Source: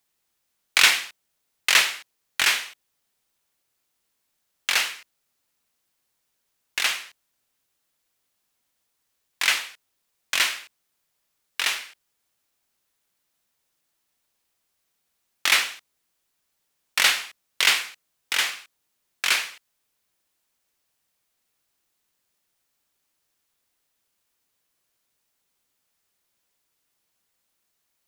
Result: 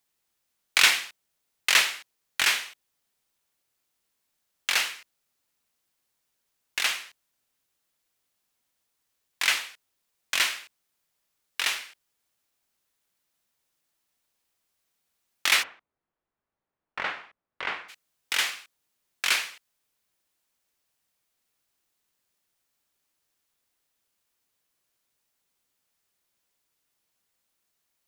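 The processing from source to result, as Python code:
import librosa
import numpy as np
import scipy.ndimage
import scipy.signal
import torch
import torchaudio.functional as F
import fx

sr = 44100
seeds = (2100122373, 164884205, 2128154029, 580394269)

y = fx.lowpass(x, sr, hz=1300.0, slope=12, at=(15.62, 17.88), fade=0.02)
y = y * 10.0 ** (-2.5 / 20.0)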